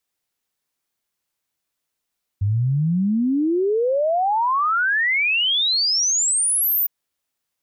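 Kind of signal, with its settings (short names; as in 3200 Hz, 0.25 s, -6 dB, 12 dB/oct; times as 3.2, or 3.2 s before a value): log sweep 96 Hz -> 15000 Hz 4.46 s -16.5 dBFS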